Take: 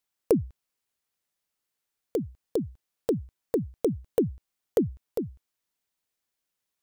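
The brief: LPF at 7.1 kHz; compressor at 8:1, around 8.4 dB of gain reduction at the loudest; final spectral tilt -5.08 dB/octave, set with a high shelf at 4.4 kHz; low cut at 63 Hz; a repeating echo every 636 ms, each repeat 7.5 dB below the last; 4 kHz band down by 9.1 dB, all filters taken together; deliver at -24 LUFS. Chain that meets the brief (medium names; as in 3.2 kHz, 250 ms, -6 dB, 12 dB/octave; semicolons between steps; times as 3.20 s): high-pass 63 Hz; low-pass 7.1 kHz; peaking EQ 4 kHz -8.5 dB; treble shelf 4.4 kHz -6 dB; compression 8:1, threshold -27 dBFS; feedback delay 636 ms, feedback 42%, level -7.5 dB; trim +13 dB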